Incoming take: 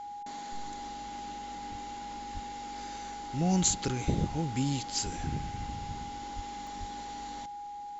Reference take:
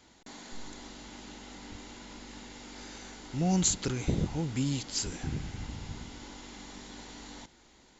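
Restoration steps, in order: band-stop 820 Hz, Q 30; de-plosive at 2.33/5.16/6.35/6.79 s; interpolate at 6.67 s, 1.6 ms

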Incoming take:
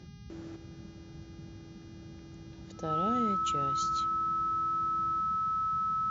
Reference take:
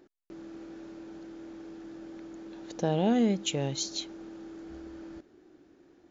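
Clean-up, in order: de-hum 407.2 Hz, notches 15; band-stop 1.3 kHz, Q 30; noise print and reduce 11 dB; gain correction +8.5 dB, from 0.56 s

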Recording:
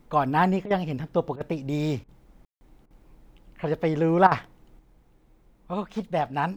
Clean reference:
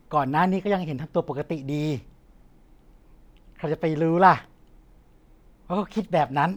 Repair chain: room tone fill 2.45–2.61 s; interpolate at 0.66/1.36/2.04/2.86/4.27 s, 44 ms; gain correction +4 dB, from 4.79 s

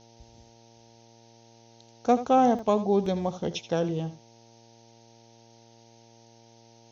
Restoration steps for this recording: de-hum 115.3 Hz, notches 8; interpolate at 2.59/3.06 s, 2.4 ms; noise reduction 15 dB, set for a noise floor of -56 dBFS; inverse comb 80 ms -13.5 dB

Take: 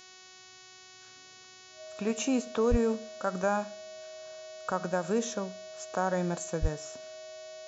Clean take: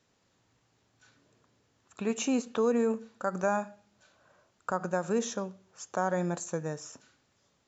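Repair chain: de-hum 371.6 Hz, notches 19; band-stop 630 Hz, Q 30; de-plosive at 2.70/6.61 s

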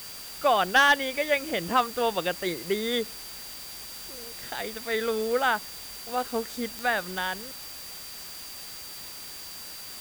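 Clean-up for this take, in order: clip repair -12 dBFS; de-click; band-stop 4.7 kHz, Q 30; noise reduction 30 dB, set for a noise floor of -41 dBFS

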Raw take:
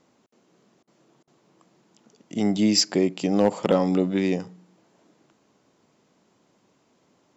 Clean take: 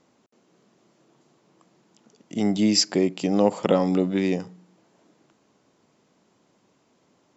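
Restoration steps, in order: clip repair -9.5 dBFS; interpolate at 0.83/1.23 s, 43 ms

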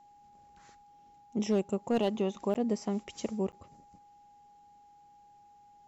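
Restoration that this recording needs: clip repair -21 dBFS; band-stop 820 Hz, Q 30; interpolate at 2.54/3.52 s, 9.2 ms

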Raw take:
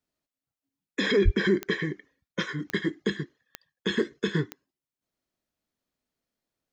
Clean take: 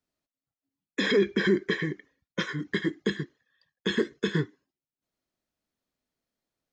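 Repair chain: de-click; de-plosive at 1.24 s

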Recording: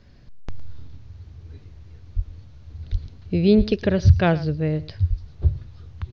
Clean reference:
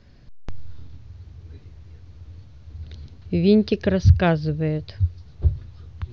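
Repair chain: de-plosive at 2.15/2.91/3.57/5.09 s; inverse comb 110 ms -18 dB

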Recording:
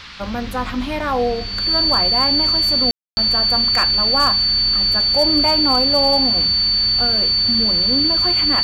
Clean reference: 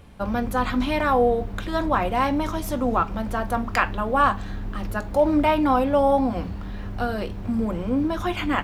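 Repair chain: clip repair -8 dBFS; band-stop 4.5 kHz, Q 30; room tone fill 2.91–3.17 s; noise print and reduce 7 dB

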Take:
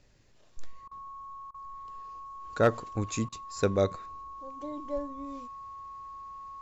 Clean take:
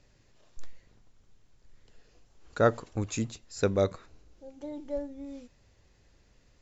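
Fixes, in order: clip repair -13.5 dBFS; band-stop 1.1 kHz, Q 30; interpolate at 0.88/1.51/3.29 s, 32 ms

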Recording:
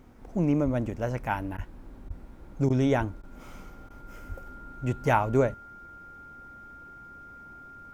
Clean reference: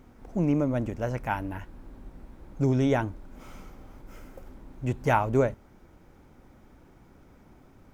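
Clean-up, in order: band-stop 1.4 kHz, Q 30; de-plosive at 0.64/1.56/2.07/2.98/4.28 s; interpolate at 1.57/2.09/2.69/3.22/3.89 s, 11 ms

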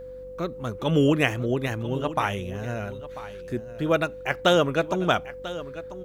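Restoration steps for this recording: de-hum 47.8 Hz, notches 7; band-stop 510 Hz, Q 30; inverse comb 992 ms -15 dB

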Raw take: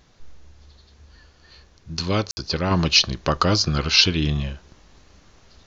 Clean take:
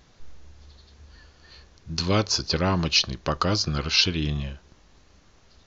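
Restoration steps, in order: room tone fill 2.31–2.37 s; gain correction -4.5 dB, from 2.71 s

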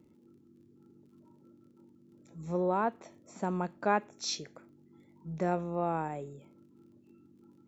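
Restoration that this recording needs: de-click

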